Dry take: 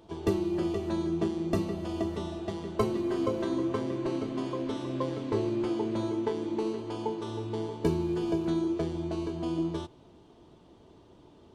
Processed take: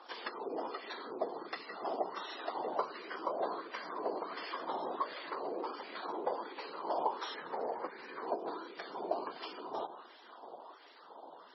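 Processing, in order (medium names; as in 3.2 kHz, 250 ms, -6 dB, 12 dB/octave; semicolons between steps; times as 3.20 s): 7.34–8.28 s: median filter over 41 samples; resonant high shelf 3.9 kHz +11.5 dB, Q 1.5; 3.22–4.89 s: doubling 18 ms -11 dB; on a send: tape echo 174 ms, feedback 83%, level -21 dB, low-pass 3.6 kHz; on the sum: whisper effect; compression 12:1, threshold -35 dBFS, peak gain reduction 17 dB; frequency weighting A; wah-wah 1.4 Hz 700–2000 Hz, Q 2.8; trim +16.5 dB; MP3 16 kbps 24 kHz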